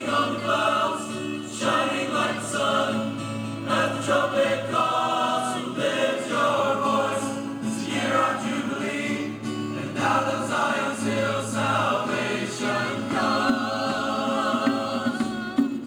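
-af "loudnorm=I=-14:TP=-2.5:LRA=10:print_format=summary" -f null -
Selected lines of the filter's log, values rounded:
Input Integrated:    -24.6 LUFS
Input True Peak:     -10.4 dBTP
Input LRA:             1.1 LU
Input Threshold:     -34.6 LUFS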